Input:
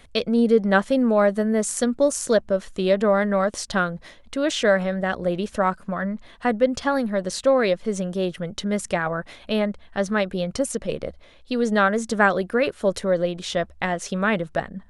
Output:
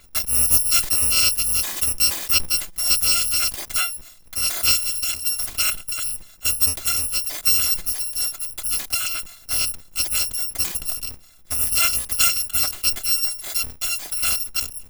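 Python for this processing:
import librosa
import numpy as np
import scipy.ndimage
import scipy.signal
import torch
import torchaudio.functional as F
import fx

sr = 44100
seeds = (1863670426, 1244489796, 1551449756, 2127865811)

y = fx.bit_reversed(x, sr, seeds[0], block=256)
y = fx.sustainer(y, sr, db_per_s=140.0)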